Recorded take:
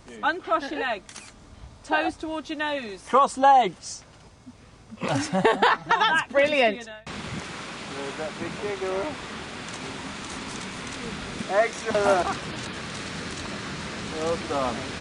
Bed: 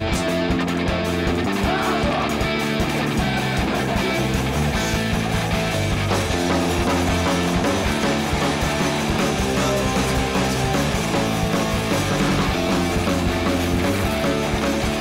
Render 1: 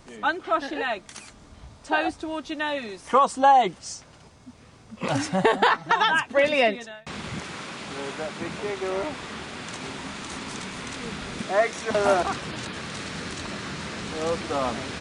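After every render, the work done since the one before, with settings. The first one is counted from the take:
hum removal 50 Hz, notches 2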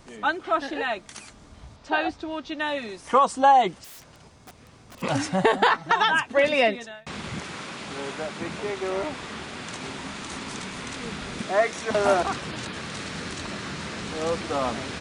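0:01.76–0:02.60: Chebyshev low-pass filter 4,600 Hz
0:03.84–0:05.02: wrap-around overflow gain 39.5 dB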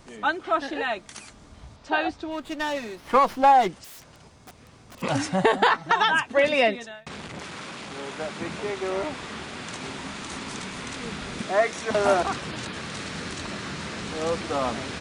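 0:02.31–0:03.69: windowed peak hold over 5 samples
0:07.08–0:08.20: saturating transformer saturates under 1,000 Hz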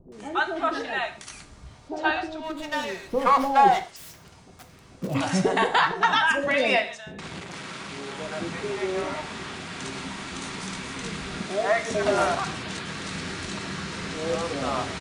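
multiband delay without the direct sound lows, highs 120 ms, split 580 Hz
reverb whose tail is shaped and stops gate 170 ms falling, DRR 6.5 dB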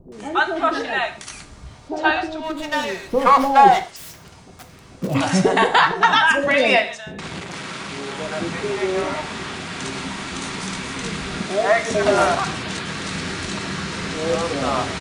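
level +6 dB

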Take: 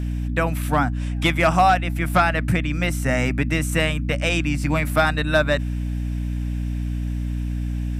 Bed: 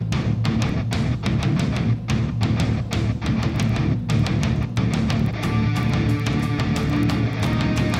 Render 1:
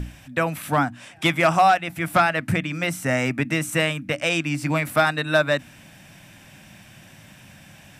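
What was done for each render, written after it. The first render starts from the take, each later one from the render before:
mains-hum notches 60/120/180/240/300 Hz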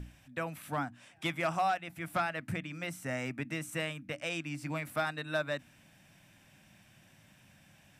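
level −14 dB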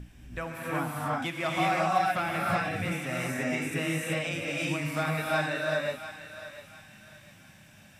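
feedback echo with a high-pass in the loop 699 ms, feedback 36%, high-pass 860 Hz, level −11 dB
reverb whose tail is shaped and stops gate 410 ms rising, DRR −5 dB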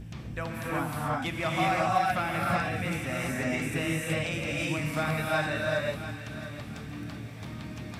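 mix in bed −19 dB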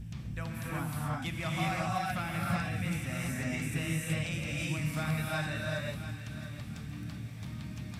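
drawn EQ curve 180 Hz 0 dB, 390 Hz −11 dB, 8,700 Hz −1 dB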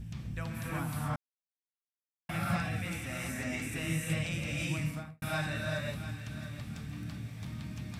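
0:01.16–0:02.29: silence
0:02.79–0:03.83: parametric band 150 Hz −10 dB 0.57 octaves
0:04.78–0:05.22: fade out and dull

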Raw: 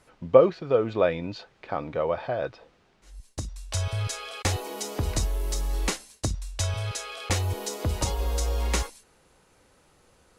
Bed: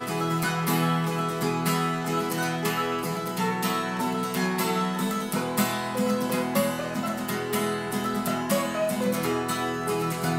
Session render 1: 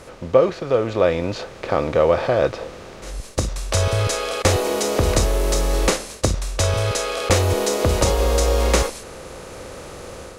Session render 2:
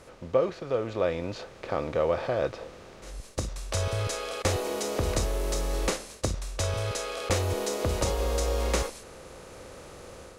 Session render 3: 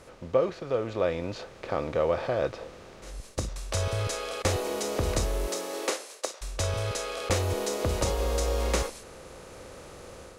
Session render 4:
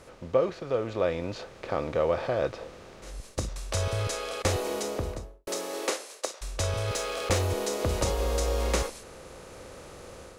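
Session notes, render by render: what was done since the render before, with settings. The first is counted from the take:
compressor on every frequency bin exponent 0.6; automatic gain control gain up to 6 dB
level −9.5 dB
0:05.46–0:06.41: high-pass filter 200 Hz → 510 Hz 24 dB per octave
0:04.73–0:05.47: fade out and dull; 0:06.88–0:07.47: mu-law and A-law mismatch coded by mu

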